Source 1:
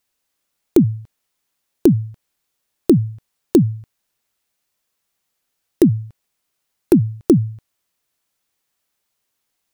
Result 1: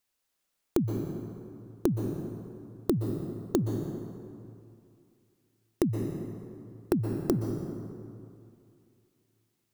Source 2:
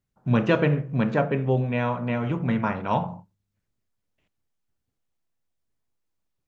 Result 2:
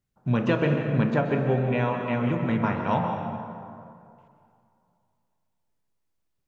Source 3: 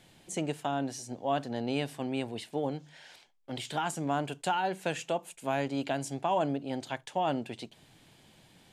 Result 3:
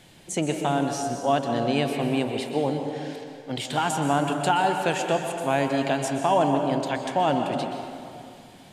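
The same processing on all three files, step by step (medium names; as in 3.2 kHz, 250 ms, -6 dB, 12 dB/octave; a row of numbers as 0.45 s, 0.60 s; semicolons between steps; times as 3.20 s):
compression 6:1, threshold -18 dBFS; plate-style reverb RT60 2.5 s, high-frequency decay 0.55×, pre-delay 110 ms, DRR 4 dB; peak normalisation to -9 dBFS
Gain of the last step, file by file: -6.0 dB, -0.5 dB, +7.0 dB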